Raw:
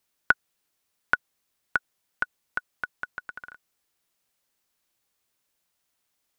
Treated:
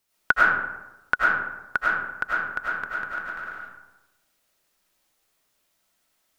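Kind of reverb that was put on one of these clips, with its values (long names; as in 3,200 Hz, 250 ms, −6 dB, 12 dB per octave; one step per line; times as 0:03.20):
comb and all-pass reverb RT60 1 s, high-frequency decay 0.5×, pre-delay 60 ms, DRR −7 dB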